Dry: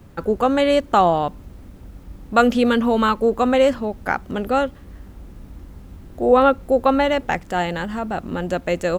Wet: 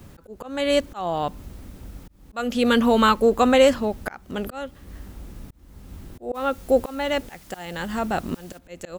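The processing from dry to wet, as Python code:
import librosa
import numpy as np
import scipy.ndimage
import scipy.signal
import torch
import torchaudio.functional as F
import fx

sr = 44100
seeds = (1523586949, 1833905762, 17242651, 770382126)

y = fx.high_shelf(x, sr, hz=2900.0, db=8.0)
y = fx.auto_swell(y, sr, attack_ms=469.0)
y = fx.dmg_noise_colour(y, sr, seeds[0], colour='white', level_db=-52.0, at=(6.34, 8.57), fade=0.02)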